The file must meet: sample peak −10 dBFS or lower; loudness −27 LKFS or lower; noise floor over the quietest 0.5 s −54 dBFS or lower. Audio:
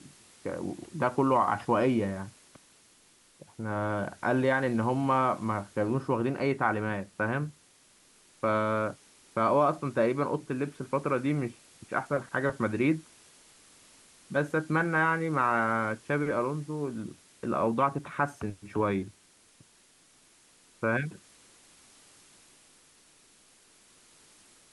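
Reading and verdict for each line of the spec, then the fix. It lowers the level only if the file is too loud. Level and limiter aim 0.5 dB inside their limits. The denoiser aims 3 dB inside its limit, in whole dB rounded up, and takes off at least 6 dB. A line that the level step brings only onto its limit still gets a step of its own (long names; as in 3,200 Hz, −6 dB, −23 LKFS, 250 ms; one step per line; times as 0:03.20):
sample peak −12.0 dBFS: in spec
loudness −29.5 LKFS: in spec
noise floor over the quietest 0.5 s −62 dBFS: in spec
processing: no processing needed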